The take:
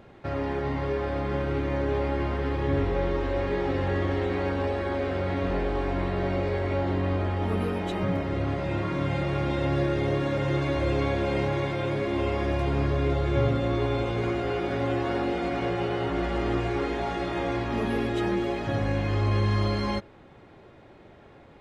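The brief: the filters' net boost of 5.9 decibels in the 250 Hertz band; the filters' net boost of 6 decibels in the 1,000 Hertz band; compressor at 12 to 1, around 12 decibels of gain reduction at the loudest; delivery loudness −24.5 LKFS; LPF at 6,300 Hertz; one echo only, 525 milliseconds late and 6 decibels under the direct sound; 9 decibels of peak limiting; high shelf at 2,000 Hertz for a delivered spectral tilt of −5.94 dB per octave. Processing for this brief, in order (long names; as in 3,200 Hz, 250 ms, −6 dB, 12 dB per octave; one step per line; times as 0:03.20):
low-pass filter 6,300 Hz
parametric band 250 Hz +7.5 dB
parametric band 1,000 Hz +6.5 dB
high-shelf EQ 2,000 Hz +4 dB
downward compressor 12 to 1, threshold −30 dBFS
brickwall limiter −30 dBFS
single-tap delay 525 ms −6 dB
level +13 dB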